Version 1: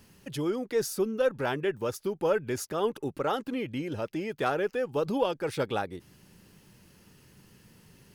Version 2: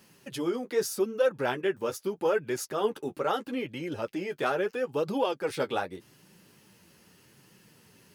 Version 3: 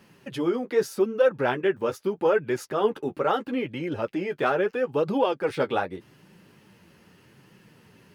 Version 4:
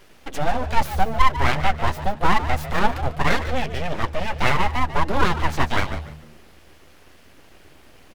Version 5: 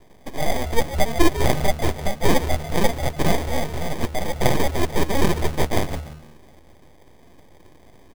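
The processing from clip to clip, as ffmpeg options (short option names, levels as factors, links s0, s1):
-af "highpass=f=230:p=1,flanger=delay=5.2:depth=8.1:regen=-24:speed=0.79:shape=triangular,volume=1.68"
-af "bass=f=250:g=1,treble=f=4000:g=-11,volume=1.68"
-filter_complex "[0:a]aeval=exprs='abs(val(0))':c=same,asplit=4[s0][s1][s2][s3];[s1]adelay=146,afreqshift=-77,volume=0.251[s4];[s2]adelay=292,afreqshift=-154,volume=0.075[s5];[s3]adelay=438,afreqshift=-231,volume=0.0226[s6];[s0][s4][s5][s6]amix=inputs=4:normalize=0,volume=2.24"
-af "acrusher=samples=32:mix=1:aa=0.000001"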